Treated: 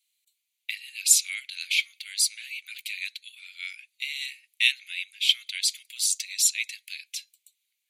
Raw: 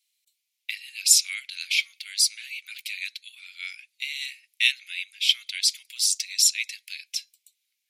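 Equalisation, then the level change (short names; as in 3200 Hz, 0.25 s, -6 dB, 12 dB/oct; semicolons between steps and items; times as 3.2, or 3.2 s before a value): HPF 1400 Hz 12 dB/oct; bell 5300 Hz -11 dB 0.2 oct; 0.0 dB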